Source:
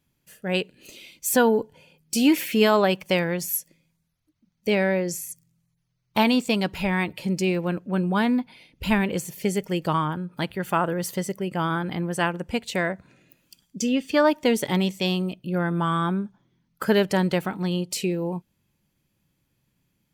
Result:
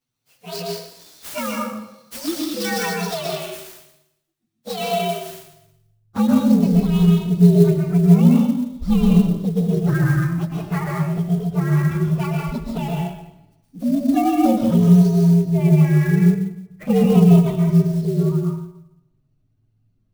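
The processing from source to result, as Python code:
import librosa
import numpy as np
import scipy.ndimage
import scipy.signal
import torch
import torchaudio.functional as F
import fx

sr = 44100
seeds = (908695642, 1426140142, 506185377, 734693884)

y = fx.partial_stretch(x, sr, pct=123)
y = fx.tilt_eq(y, sr, slope=fx.steps((0.0, 2.0), (5.27, -3.0)))
y = fx.env_flanger(y, sr, rest_ms=8.2, full_db=-15.0)
y = fx.rev_plate(y, sr, seeds[0], rt60_s=0.83, hf_ratio=0.95, predelay_ms=105, drr_db=-1.5)
y = fx.clock_jitter(y, sr, seeds[1], jitter_ms=0.022)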